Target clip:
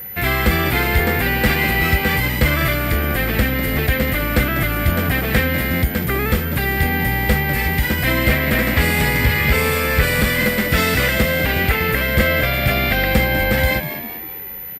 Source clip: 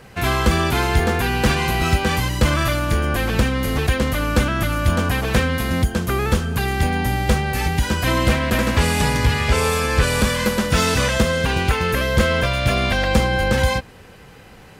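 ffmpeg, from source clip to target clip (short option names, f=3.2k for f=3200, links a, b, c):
-filter_complex "[0:a]aeval=exprs='val(0)+0.0355*sin(2*PI*14000*n/s)':c=same,equalizer=f=1k:t=o:w=0.33:g=-7,equalizer=f=2k:t=o:w=0.33:g=10,equalizer=f=6.3k:t=o:w=0.33:g=-9,asplit=6[a][b][c][d][e][f];[b]adelay=197,afreqshift=83,volume=-11.5dB[g];[c]adelay=394,afreqshift=166,volume=-18.1dB[h];[d]adelay=591,afreqshift=249,volume=-24.6dB[i];[e]adelay=788,afreqshift=332,volume=-31.2dB[j];[f]adelay=985,afreqshift=415,volume=-37.7dB[k];[a][g][h][i][j][k]amix=inputs=6:normalize=0"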